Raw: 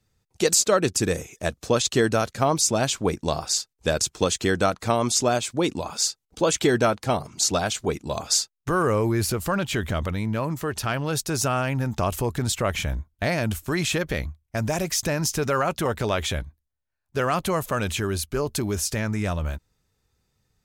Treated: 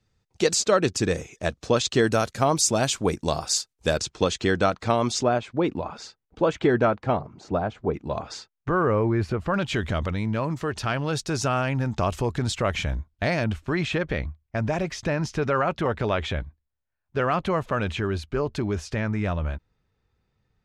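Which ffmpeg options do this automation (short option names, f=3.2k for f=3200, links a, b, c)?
-af "asetnsamples=n=441:p=0,asendcmd='2.07 lowpass f 12000;3.97 lowpass f 4700;5.23 lowpass f 2000;7.21 lowpass f 1100;7.94 lowpass f 2100;9.54 lowpass f 5500;13.44 lowpass f 3000',lowpass=5.8k"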